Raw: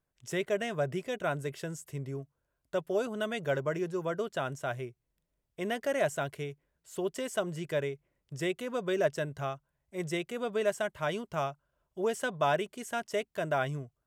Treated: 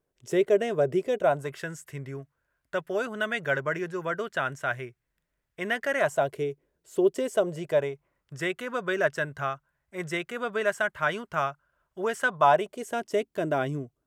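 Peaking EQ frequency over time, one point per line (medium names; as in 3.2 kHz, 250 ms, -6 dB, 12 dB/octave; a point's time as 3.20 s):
peaking EQ +11.5 dB 1.2 oct
1.14 s 410 Hz
1.63 s 1.7 kHz
5.95 s 1.7 kHz
6.35 s 380 Hz
7.22 s 380 Hz
8.34 s 1.5 kHz
12.21 s 1.5 kHz
13.09 s 310 Hz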